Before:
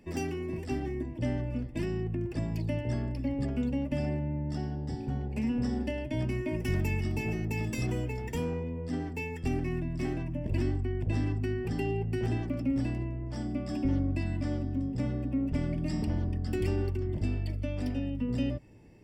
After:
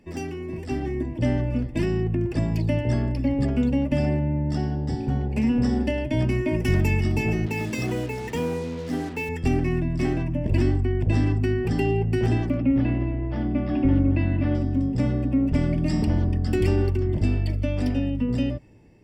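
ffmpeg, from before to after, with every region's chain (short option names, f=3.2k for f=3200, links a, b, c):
-filter_complex "[0:a]asettb=1/sr,asplit=3[a][b][c];[a]atrim=end=7.464[d];[b]atrim=start=7.46:end=9.29,asetpts=PTS-STARTPTS,afade=t=in:d=0.004:c=qsin,afade=t=out:st=1.826:d=0.004:c=qsin,highpass=f=210:p=1,highshelf=f=5.7k:g=-5.5,acrusher=bits=7:mix=0:aa=0.5[e];[c]atrim=start=9.286[f];[d][e]acrossfade=d=0.004:c1=hsin:c2=qsin[g];[g][f]acrossfade=d=0.004:c1=qsin:c2=hsin,asettb=1/sr,asplit=3[h][i][j];[h]atrim=end=12.574[k];[i]atrim=start=12.57:end=14.55,asetpts=PTS-STARTPTS,afade=t=in:d=0.004:c=qsin,afade=t=out:st=1.976:d=0.004:c=qsin,lowpass=f=3.3k:w=0.5412,lowpass=f=3.3k:w=1.3066,aecho=1:1:223|446|669:0.251|0.0728|0.0211,atrim=end_sample=87318[l];[j]atrim=start=14.546[m];[k][l]acrossfade=d=0.004:c1=hsin:c2=qsin[n];[n][m]acrossfade=d=0.004:c1=qsin:c2=hsin,highshelf=f=9.9k:g=-5,dynaudnorm=f=180:g=9:m=7dB,volume=1.5dB"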